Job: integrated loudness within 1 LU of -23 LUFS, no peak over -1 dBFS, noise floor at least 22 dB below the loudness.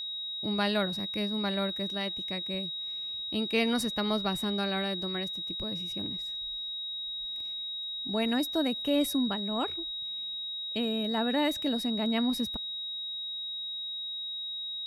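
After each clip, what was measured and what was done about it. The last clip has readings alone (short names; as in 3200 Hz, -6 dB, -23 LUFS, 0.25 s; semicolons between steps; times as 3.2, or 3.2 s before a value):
steady tone 3800 Hz; tone level -34 dBFS; loudness -31.0 LUFS; peak -14.0 dBFS; loudness target -23.0 LUFS
-> notch 3800 Hz, Q 30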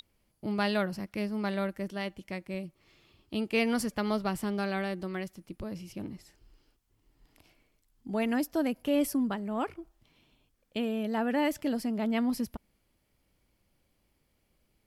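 steady tone none; loudness -32.0 LUFS; peak -15.5 dBFS; loudness target -23.0 LUFS
-> gain +9 dB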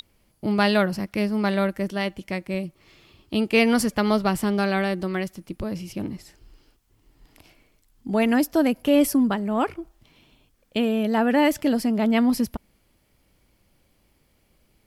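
loudness -23.0 LUFS; peak -6.5 dBFS; noise floor -65 dBFS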